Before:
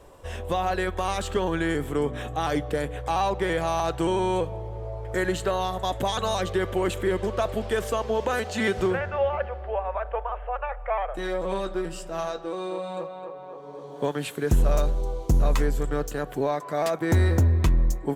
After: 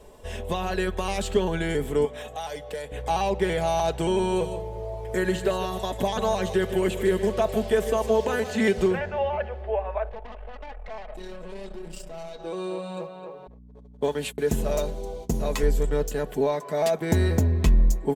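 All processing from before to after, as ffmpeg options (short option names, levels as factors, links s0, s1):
-filter_complex "[0:a]asettb=1/sr,asplit=3[s0][s1][s2];[s0]atrim=end=2.054[s3];[s1]atrim=start=2.05:end=2.92,asetpts=PTS-STARTPTS,afade=t=in:d=0.004:c=qsin,afade=t=out:st=0.866:d=0.004:c=qsin,lowshelf=f=430:t=q:w=1.5:g=-8,acrossover=split=100|1300|3300|6600[s4][s5][s6][s7][s8];[s4]acompressor=threshold=0.00355:ratio=3[s9];[s5]acompressor=threshold=0.0158:ratio=3[s10];[s6]acompressor=threshold=0.00562:ratio=3[s11];[s7]acompressor=threshold=0.00355:ratio=3[s12];[s8]acompressor=threshold=0.002:ratio=3[s13];[s9][s10][s11][s12][s13]amix=inputs=5:normalize=0[s14];[s2]atrim=start=2.916[s15];[s3][s14]acrossfade=d=0.004:c1=hsin:c2=qsin[s16];[s16][s15]acrossfade=d=0.004:c1=qsin:c2=hsin,asettb=1/sr,asplit=3[s17][s18][s19];[s17]atrim=end=4.084[s20];[s18]atrim=start=4.08:end=8.6,asetpts=PTS-STARTPTS,afade=t=in:d=0.004:c=qsin,afade=t=out:st=4.516:d=0.004:c=qsin,highshelf=f=5600:g=8,aecho=1:1:154:0.251,atrim=end_sample=199332,acrossover=split=2900[s21][s22];[s22]acompressor=threshold=0.00794:ratio=4:attack=1:release=60[s23];[s21][s23]amix=inputs=2:normalize=0[s24];[s19]atrim=start=8.596[s25];[s20][s24]acrossfade=d=0.004:c1=hsin:c2=qsin[s26];[s26][s25]acrossfade=d=0.004:c1=qsin:c2=hsin,asettb=1/sr,asplit=3[s27][s28][s29];[s27]atrim=end=10.094[s30];[s28]atrim=start=10.09:end=12.4,asetpts=PTS-STARTPTS,afade=t=in:d=0.004:c=qsin,afade=t=out:st=2.306:d=0.004:c=qsin,acompressor=threshold=0.0251:ratio=3:attack=3.2:release=140:knee=1:detection=peak,aeval=exprs='(tanh(56.2*val(0)+0.75)-tanh(0.75))/56.2':c=same[s31];[s29]atrim=start=12.396[s32];[s30][s31]acrossfade=d=0.004:c1=hsin:c2=qsin[s33];[s33][s32]acrossfade=d=0.004:c1=qsin:c2=hsin,asettb=1/sr,asplit=3[s34][s35][s36];[s34]atrim=end=13.474[s37];[s35]atrim=start=13.47:end=15.63,asetpts=PTS-STARTPTS,afade=t=in:d=0.004:c=qsin,afade=t=out:st=2.156:d=0.004:c=qsin,agate=range=0.0141:threshold=0.0141:ratio=16:release=100:detection=peak,highpass=f=170:p=1,aeval=exprs='val(0)+0.00398*(sin(2*PI*60*n/s)+sin(2*PI*2*60*n/s)/2+sin(2*PI*3*60*n/s)/3+sin(2*PI*4*60*n/s)/4+sin(2*PI*5*60*n/s)/5)':c=same[s38];[s36]atrim=start=15.626[s39];[s37][s38]acrossfade=d=0.004:c1=hsin:c2=qsin[s40];[s40][s39]acrossfade=d=0.004:c1=qsin:c2=hsin,equalizer=f=1300:w=2.1:g=-8,aecho=1:1:4.7:0.53,volume=1.12"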